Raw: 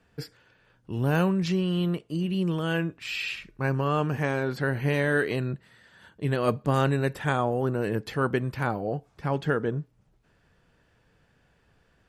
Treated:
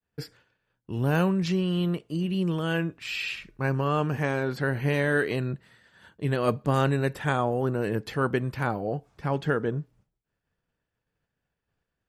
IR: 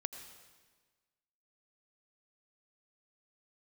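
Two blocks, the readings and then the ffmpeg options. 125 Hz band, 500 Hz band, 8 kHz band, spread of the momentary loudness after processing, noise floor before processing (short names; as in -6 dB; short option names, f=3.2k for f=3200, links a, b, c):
0.0 dB, 0.0 dB, 0.0 dB, 9 LU, -66 dBFS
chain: -af "agate=range=-33dB:threshold=-52dB:ratio=3:detection=peak"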